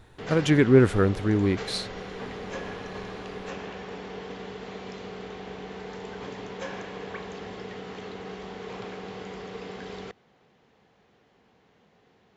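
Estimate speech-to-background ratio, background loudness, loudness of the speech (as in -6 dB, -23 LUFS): 15.5 dB, -38.0 LUFS, -22.5 LUFS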